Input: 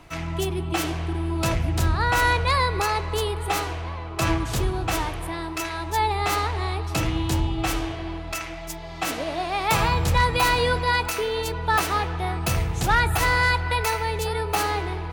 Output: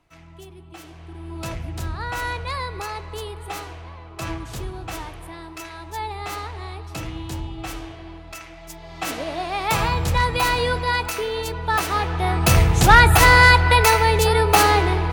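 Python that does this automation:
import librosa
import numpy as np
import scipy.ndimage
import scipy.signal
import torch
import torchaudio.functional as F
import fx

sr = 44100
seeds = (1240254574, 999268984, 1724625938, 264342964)

y = fx.gain(x, sr, db=fx.line((0.85, -16.5), (1.37, -7.0), (8.52, -7.0), (9.11, 0.0), (11.83, 0.0), (12.57, 9.0)))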